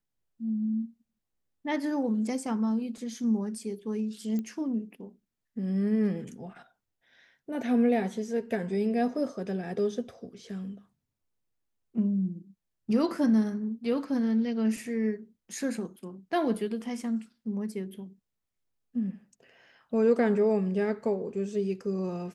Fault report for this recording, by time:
4.39 s: pop -23 dBFS

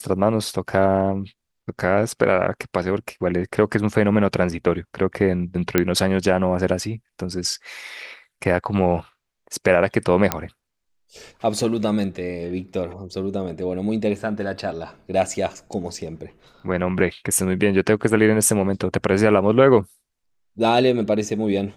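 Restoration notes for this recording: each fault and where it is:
5.78 s: pop -3 dBFS
10.32 s: pop -3 dBFS

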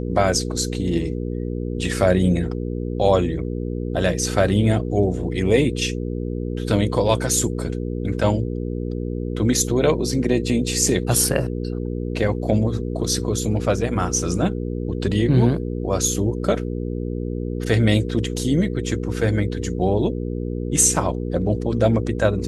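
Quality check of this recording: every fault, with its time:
hum 60 Hz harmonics 8 -26 dBFS

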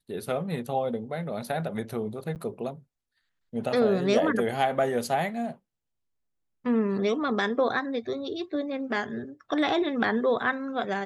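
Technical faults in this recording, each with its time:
2.35–2.36 s: dropout 8.9 ms

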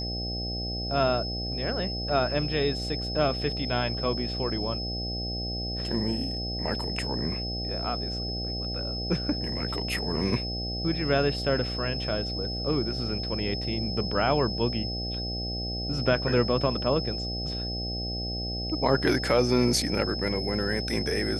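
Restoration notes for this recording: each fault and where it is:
buzz 60 Hz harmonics 13 -34 dBFS
whine 5.2 kHz -33 dBFS

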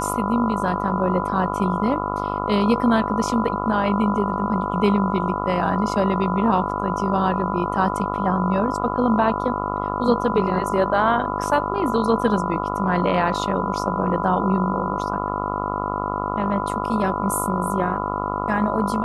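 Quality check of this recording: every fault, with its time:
buzz 50 Hz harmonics 28 -27 dBFS
whine 1 kHz -28 dBFS

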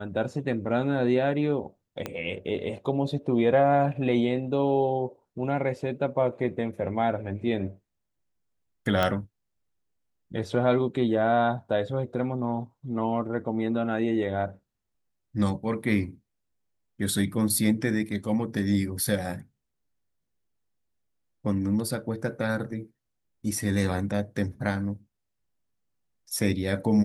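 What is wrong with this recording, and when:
2.06 s: pop -16 dBFS
9.03 s: pop -11 dBFS

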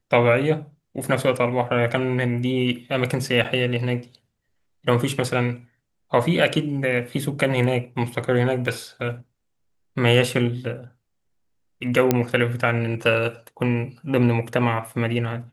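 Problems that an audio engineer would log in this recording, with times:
3.44–3.45 s: dropout 6.8 ms
8.67 s: dropout 2.2 ms
12.11 s: pop -4 dBFS

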